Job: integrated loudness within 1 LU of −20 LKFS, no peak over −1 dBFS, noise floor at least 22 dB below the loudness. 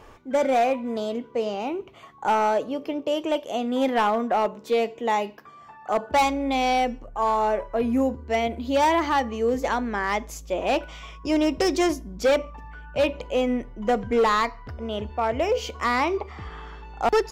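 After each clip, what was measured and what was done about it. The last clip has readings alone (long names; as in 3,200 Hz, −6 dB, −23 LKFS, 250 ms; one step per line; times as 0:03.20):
share of clipped samples 1.7%; peaks flattened at −15.5 dBFS; integrated loudness −24.5 LKFS; sample peak −15.5 dBFS; target loudness −20.0 LKFS
→ clipped peaks rebuilt −15.5 dBFS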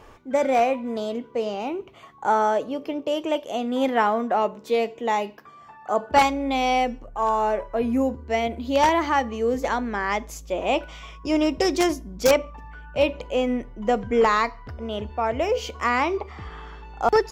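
share of clipped samples 0.0%; integrated loudness −24.0 LKFS; sample peak −6.5 dBFS; target loudness −20.0 LKFS
→ level +4 dB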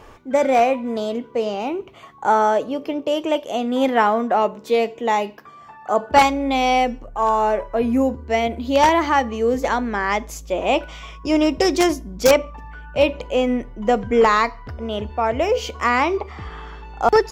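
integrated loudness −20.0 LKFS; sample peak −2.5 dBFS; background noise floor −44 dBFS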